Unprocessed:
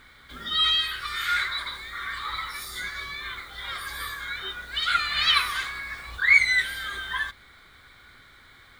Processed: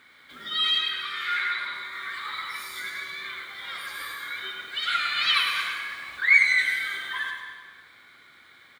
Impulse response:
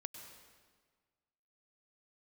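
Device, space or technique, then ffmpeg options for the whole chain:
PA in a hall: -filter_complex "[0:a]asettb=1/sr,asplit=3[link_01][link_02][link_03];[link_01]atrim=end=0.784[link_04];[link_02]atrim=start=0.78:end=1.93,asetpts=PTS-STARTPTS,afade=type=in:duration=0.004:curve=qsin,afade=type=out:start_time=1.146:duration=0.004:curve=qsin,acrossover=split=4200[link_05][link_06];[link_06]acompressor=threshold=-50dB:ratio=4:attack=1:release=60[link_07];[link_05][link_07]amix=inputs=2:normalize=0[link_08];[link_03]atrim=start=1.926[link_09];[link_04][link_08]acrossfade=duration=0.004:curve1=hsin:curve2=qsin[link_10];[link_10][link_09]acrossfade=duration=0.004:curve1=qsin:curve2=hsin,highpass=180,equalizer=frequency=2400:width_type=o:width=0.77:gain=4.5,aecho=1:1:103:0.473[link_11];[1:a]atrim=start_sample=2205[link_12];[link_11][link_12]afir=irnorm=-1:irlink=0"

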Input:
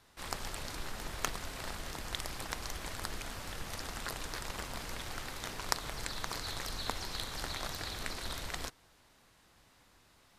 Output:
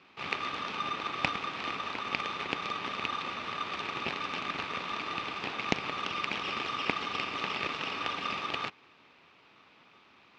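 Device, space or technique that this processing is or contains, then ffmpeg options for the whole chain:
ring modulator pedal into a guitar cabinet: -af "aeval=exprs='val(0)*sgn(sin(2*PI*1200*n/s))':channel_layout=same,highpass=94,equalizer=frequency=190:width_type=q:width=4:gain=4,equalizer=frequency=280:width_type=q:width=4:gain=5,equalizer=frequency=410:width_type=q:width=4:gain=4,equalizer=frequency=870:width_type=q:width=4:gain=4,equalizer=frequency=2500:width_type=q:width=4:gain=7,lowpass=frequency=4100:width=0.5412,lowpass=frequency=4100:width=1.3066,volume=4dB"

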